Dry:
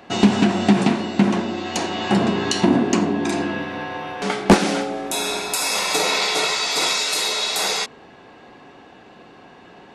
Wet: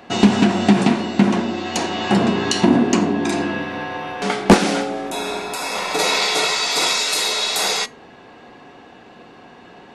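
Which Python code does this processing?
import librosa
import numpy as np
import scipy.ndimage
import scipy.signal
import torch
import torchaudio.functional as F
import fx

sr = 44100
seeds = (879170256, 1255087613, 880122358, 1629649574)

y = fx.comb_fb(x, sr, f0_hz=240.0, decay_s=0.21, harmonics='all', damping=0.0, mix_pct=40)
y = fx.high_shelf(y, sr, hz=3500.0, db=-12.0, at=(5.1, 5.99))
y = y * librosa.db_to_amplitude(5.5)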